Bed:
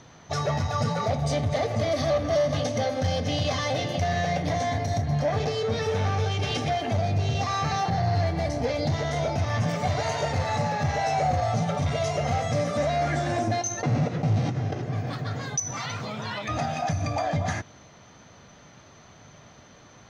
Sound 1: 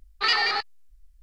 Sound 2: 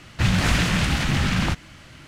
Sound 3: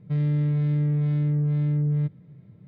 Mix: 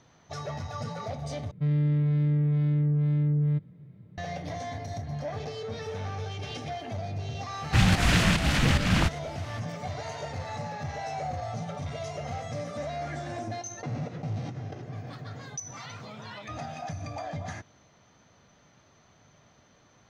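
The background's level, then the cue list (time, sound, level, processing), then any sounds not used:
bed -9.5 dB
1.51 s: replace with 3 -1.5 dB
7.54 s: add 2 -1 dB + volume shaper 146 bpm, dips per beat 1, -10 dB, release 262 ms
not used: 1

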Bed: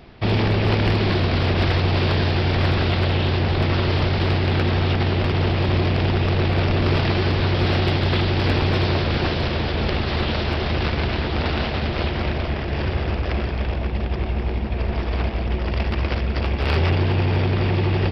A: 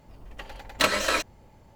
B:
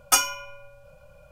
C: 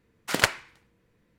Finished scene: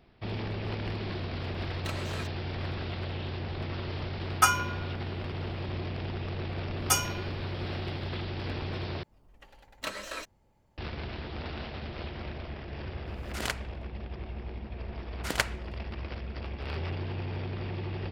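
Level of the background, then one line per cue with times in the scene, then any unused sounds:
bed -15.5 dB
1.05 s: add A -17.5 dB
4.30 s: add B -9.5 dB + peaking EQ 1.3 kHz +13.5 dB 1.4 oct
6.78 s: add B -6.5 dB
9.03 s: replace with A -14 dB
13.06 s: add C -13 dB + swell ahead of each attack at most 78 dB/s
14.96 s: add C -6.5 dB

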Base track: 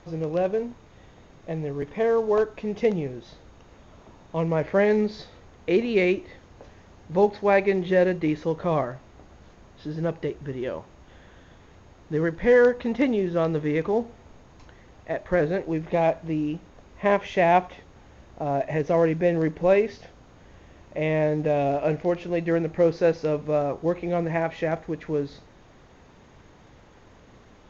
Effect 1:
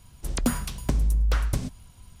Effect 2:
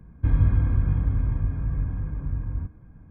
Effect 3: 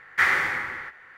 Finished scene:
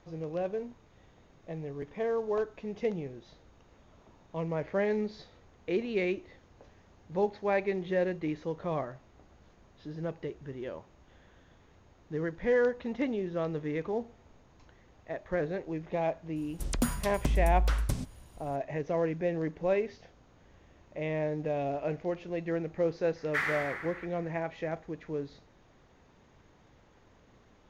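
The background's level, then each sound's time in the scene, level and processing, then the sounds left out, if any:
base track -9 dB
16.36 s: add 1 -4.5 dB
23.16 s: add 3 -10.5 dB
not used: 2

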